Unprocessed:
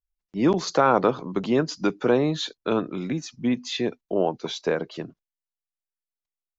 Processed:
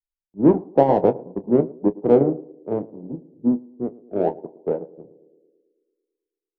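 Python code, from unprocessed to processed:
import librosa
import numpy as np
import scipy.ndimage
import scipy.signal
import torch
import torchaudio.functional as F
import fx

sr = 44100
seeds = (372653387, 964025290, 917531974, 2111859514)

p1 = scipy.signal.sosfilt(scipy.signal.butter(12, 940.0, 'lowpass', fs=sr, output='sos'), x)
p2 = 10.0 ** (-21.5 / 20.0) * np.tanh(p1 / 10.0 ** (-21.5 / 20.0))
p3 = p1 + (p2 * librosa.db_to_amplitude(-6.5))
p4 = fx.doubler(p3, sr, ms=29.0, db=-8.0)
p5 = fx.echo_banded(p4, sr, ms=110, feedback_pct=69, hz=370.0, wet_db=-8.0)
p6 = fx.upward_expand(p5, sr, threshold_db=-28.0, expansion=2.5)
y = p6 * librosa.db_to_amplitude(5.0)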